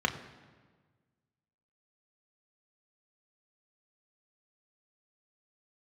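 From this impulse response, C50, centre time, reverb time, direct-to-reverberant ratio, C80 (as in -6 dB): 11.5 dB, 16 ms, 1.5 s, 3.0 dB, 13.0 dB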